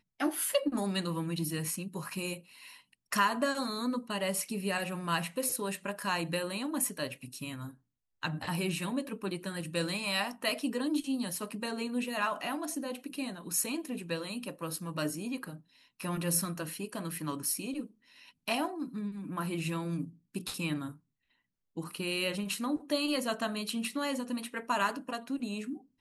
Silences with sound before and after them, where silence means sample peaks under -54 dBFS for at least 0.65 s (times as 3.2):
20.97–21.76